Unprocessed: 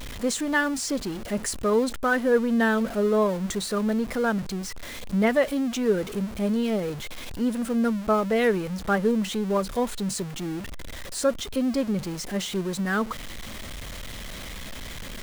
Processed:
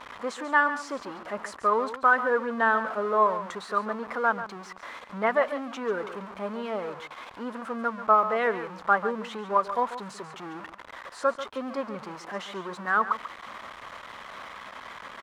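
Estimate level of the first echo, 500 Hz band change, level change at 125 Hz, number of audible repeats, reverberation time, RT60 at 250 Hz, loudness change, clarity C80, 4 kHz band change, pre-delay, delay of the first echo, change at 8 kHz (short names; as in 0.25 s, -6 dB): -12.0 dB, -4.0 dB, -14.5 dB, 1, none, none, -2.0 dB, none, -9.0 dB, none, 0.14 s, under -15 dB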